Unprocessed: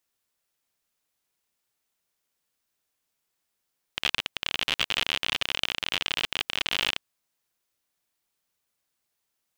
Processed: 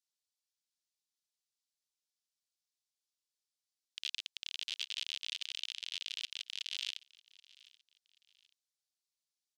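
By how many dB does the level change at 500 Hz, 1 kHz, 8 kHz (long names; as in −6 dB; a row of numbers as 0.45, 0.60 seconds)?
below −40 dB, below −30 dB, −8.5 dB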